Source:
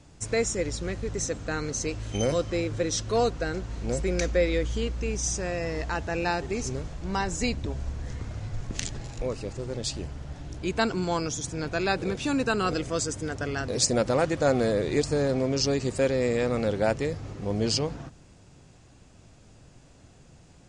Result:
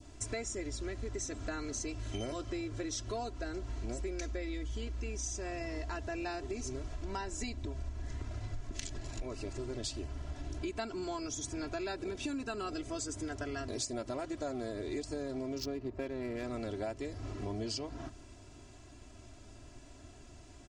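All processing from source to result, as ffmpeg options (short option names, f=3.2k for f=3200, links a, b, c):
-filter_complex "[0:a]asettb=1/sr,asplit=3[a][b][c];[a]atrim=end=15.584[d];[b]atrim=start=15.58:end=16.44,asetpts=PTS-STARTPTS,afade=t=in:d=0.004:c=qsin,afade=t=out:st=0.856:d=0.004:c=qsin,lowpass=f=7k:w=0.5412,lowpass=f=7k:w=1.3066,adynamicsmooth=sensitivity=3:basefreq=1.1k[e];[c]atrim=start=16.436[f];[d][e]acrossfade=d=0.004:c1=hsin:c2=qsin[g];[g][f]acrossfade=d=0.004:c1=qsin:c2=hsin,aecho=1:1:3:0.85,adynamicequalizer=threshold=0.0112:dfrequency=1800:dqfactor=0.84:tfrequency=1800:tqfactor=0.84:attack=5:release=100:ratio=0.375:range=1.5:mode=cutabove:tftype=bell,acompressor=threshold=-34dB:ratio=6,volume=-2dB"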